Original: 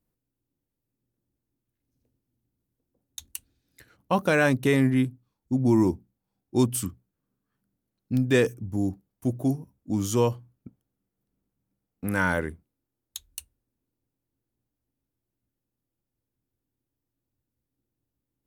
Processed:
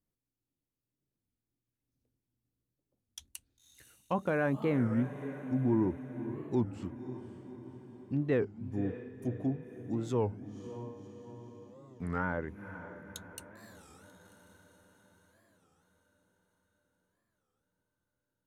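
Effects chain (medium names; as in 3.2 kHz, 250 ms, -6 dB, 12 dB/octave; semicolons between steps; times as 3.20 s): low-pass that closes with the level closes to 1.5 kHz, closed at -20.5 dBFS; echo that smears into a reverb 540 ms, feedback 58%, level -11.5 dB; warped record 33 1/3 rpm, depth 250 cents; trim -8 dB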